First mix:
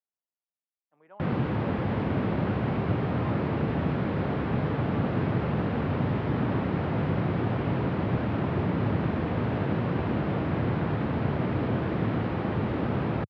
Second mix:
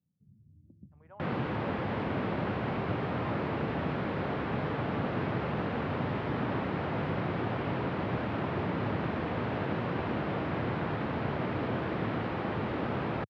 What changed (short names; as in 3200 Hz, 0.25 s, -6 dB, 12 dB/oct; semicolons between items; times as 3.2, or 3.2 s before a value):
speech: add LPF 1800 Hz 6 dB/oct; first sound: unmuted; master: add low shelf 340 Hz -8.5 dB